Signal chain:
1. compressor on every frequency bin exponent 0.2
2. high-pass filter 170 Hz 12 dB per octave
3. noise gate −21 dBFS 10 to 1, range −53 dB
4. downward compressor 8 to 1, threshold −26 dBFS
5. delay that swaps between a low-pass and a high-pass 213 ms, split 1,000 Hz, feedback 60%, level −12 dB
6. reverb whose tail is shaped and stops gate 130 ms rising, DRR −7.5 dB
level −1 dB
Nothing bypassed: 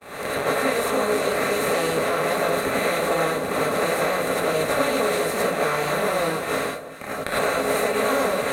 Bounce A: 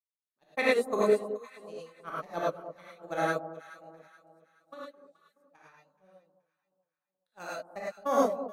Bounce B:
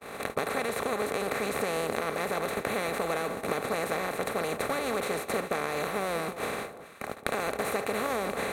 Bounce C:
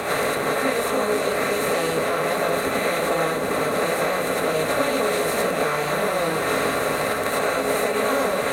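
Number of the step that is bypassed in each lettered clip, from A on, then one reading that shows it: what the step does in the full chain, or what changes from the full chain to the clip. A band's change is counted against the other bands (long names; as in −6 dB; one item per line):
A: 1, 8 kHz band −7.5 dB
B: 6, change in momentary loudness spread −1 LU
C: 3, change in momentary loudness spread −3 LU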